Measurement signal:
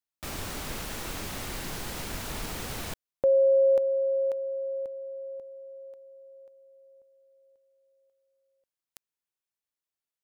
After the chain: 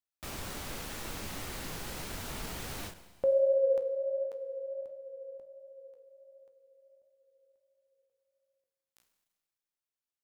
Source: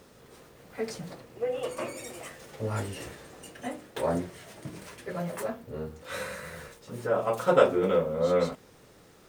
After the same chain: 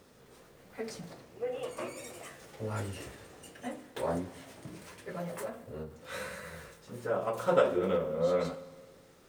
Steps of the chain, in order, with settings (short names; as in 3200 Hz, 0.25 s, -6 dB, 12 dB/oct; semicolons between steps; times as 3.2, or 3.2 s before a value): flange 1.4 Hz, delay 9.4 ms, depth 9.1 ms, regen +65%; Schroeder reverb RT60 1.6 s, combs from 33 ms, DRR 14.5 dB; ending taper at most 130 dB/s